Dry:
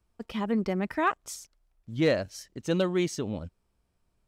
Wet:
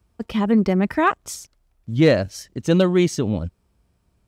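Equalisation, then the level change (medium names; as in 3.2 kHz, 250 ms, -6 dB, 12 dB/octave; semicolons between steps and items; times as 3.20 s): high-pass 50 Hz; bass shelf 240 Hz +7 dB; +7.0 dB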